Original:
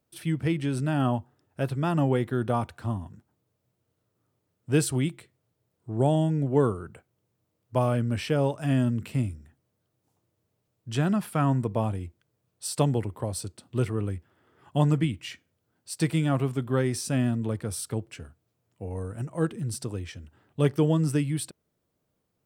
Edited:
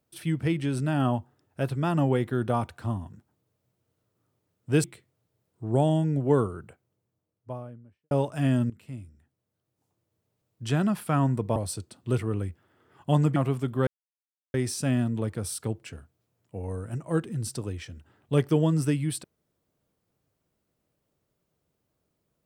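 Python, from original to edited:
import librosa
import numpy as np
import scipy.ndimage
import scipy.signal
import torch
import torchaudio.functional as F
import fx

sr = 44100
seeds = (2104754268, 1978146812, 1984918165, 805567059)

y = fx.studio_fade_out(x, sr, start_s=6.66, length_s=1.71)
y = fx.edit(y, sr, fx.cut(start_s=4.84, length_s=0.26),
    fx.fade_in_from(start_s=8.96, length_s=2.0, floor_db=-17.0),
    fx.cut(start_s=11.82, length_s=1.41),
    fx.cut(start_s=15.03, length_s=1.27),
    fx.insert_silence(at_s=16.81, length_s=0.67), tone=tone)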